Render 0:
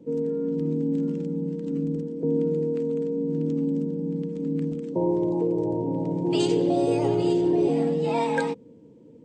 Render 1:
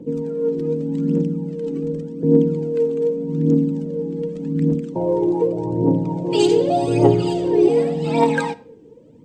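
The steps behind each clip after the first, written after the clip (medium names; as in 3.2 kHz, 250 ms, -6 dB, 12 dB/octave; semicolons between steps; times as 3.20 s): phaser 0.85 Hz, delay 2.7 ms, feedback 62%; on a send at -18 dB: reverberation RT60 0.50 s, pre-delay 5 ms; on the sum: trim +4 dB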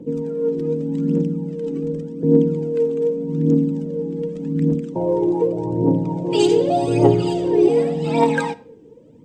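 band-stop 4.3 kHz, Q 18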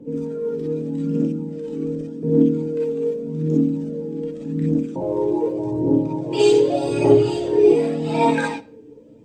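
gated-style reverb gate 80 ms rising, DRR -5 dB; trim -6 dB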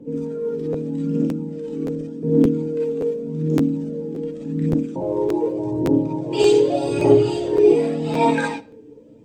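crackling interface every 0.57 s, samples 512, repeat, from 0.72 s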